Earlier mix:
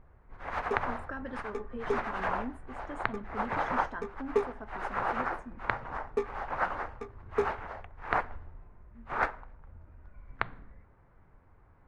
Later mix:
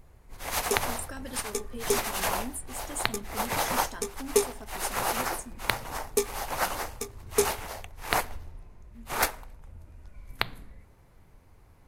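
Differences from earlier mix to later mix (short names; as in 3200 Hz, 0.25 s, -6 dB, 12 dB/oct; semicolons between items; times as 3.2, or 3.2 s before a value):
background +4.0 dB; master: remove synth low-pass 1500 Hz, resonance Q 1.7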